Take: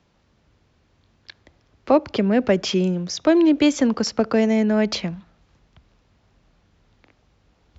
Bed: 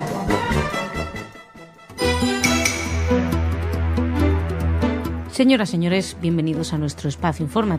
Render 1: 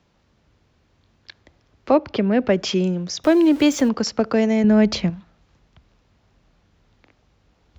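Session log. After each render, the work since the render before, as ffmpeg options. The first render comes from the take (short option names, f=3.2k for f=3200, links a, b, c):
-filter_complex "[0:a]asettb=1/sr,asplit=3[a][b][c];[a]atrim=end=1.944[d];[b]atrim=start=1.94:end=2.58,asetpts=PTS-STARTPTS,afade=t=in:d=0.004:c=qsin,afade=t=out:st=0.636:d=0.004:c=qsin,lowpass=4.7k[e];[c]atrim=start=2.576[f];[d][e]acrossfade=d=0.004:c1=hsin:c2=qsin[g];[g][f]acrossfade=d=0.004:c1=qsin:c2=hsin,asettb=1/sr,asplit=3[h][i][j];[h]atrim=end=3.244[k];[i]atrim=start=3.24:end=3.89,asetpts=PTS-STARTPTS,afade=t=in:d=0.004:c=qsin,afade=t=out:st=0.646:d=0.004:c=qsin,aeval=exprs='val(0)+0.5*0.0224*sgn(val(0))':c=same[l];[j]atrim=start=3.886[m];[k][l]acrossfade=d=0.004:c1=hsin:c2=qsin[n];[n][m]acrossfade=d=0.004:c1=qsin:c2=hsin,asettb=1/sr,asplit=3[o][p][q];[o]atrim=end=4.644[r];[p]atrim=start=4.64:end=5.1,asetpts=PTS-STARTPTS,afade=t=in:d=0.004:c=qsin,afade=t=out:st=0.456:d=0.004:c=qsin,lowshelf=f=230:g=10.5[s];[q]atrim=start=5.096[t];[r][s]acrossfade=d=0.004:c1=hsin:c2=qsin[u];[u][t]acrossfade=d=0.004:c1=qsin:c2=hsin"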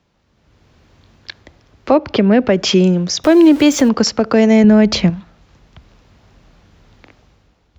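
-af "alimiter=limit=-11.5dB:level=0:latency=1:release=178,dynaudnorm=f=120:g=9:m=11.5dB"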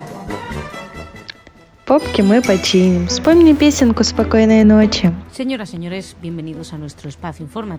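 -filter_complex "[1:a]volume=-5.5dB[a];[0:a][a]amix=inputs=2:normalize=0"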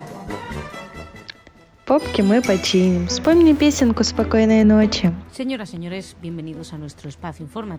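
-af "volume=-4dB"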